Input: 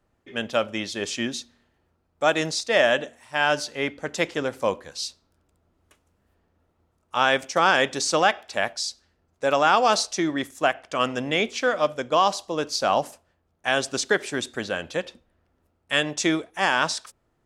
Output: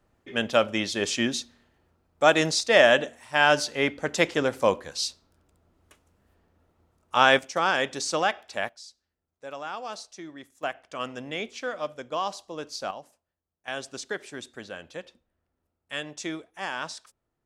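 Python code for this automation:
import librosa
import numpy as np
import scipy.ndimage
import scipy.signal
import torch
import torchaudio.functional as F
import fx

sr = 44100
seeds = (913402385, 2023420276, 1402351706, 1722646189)

y = fx.gain(x, sr, db=fx.steps((0.0, 2.0), (7.39, -5.0), (8.69, -17.0), (10.63, -9.5), (12.91, -19.0), (13.68, -11.0)))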